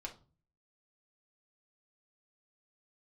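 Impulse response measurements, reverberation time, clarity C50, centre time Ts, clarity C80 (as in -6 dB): 0.35 s, 13.5 dB, 10 ms, 20.5 dB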